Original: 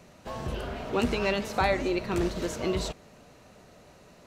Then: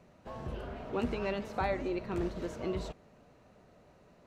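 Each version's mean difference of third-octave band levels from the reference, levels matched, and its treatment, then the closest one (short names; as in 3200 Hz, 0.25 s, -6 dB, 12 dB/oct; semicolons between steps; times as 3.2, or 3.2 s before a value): 3.0 dB: high shelf 2900 Hz -11.5 dB; gain -6 dB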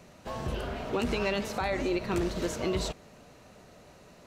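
2.0 dB: limiter -20 dBFS, peak gain reduction 7.5 dB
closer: second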